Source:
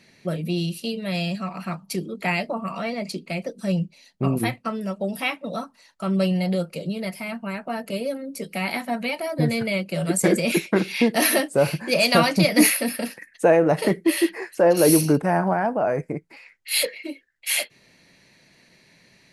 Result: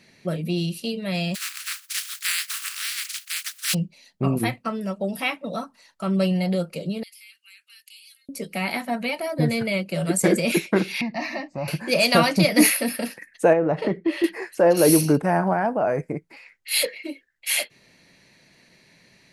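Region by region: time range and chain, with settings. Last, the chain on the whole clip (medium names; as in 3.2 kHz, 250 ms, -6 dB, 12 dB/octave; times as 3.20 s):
1.34–3.73 s: spectral contrast reduction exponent 0.21 + steep high-pass 1.4 kHz
7.03–8.29 s: inverse Chebyshev high-pass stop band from 820 Hz, stop band 60 dB + compression 2.5:1, threshold -46 dBFS
11.01–11.68 s: compression 1.5:1, threshold -24 dBFS + distance through air 180 m + static phaser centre 2.2 kHz, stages 8
13.53–14.24 s: low-pass 2.9 kHz + dynamic bell 2 kHz, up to -3 dB, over -34 dBFS, Q 1.1 + compression 1.5:1, threshold -22 dBFS
whole clip: none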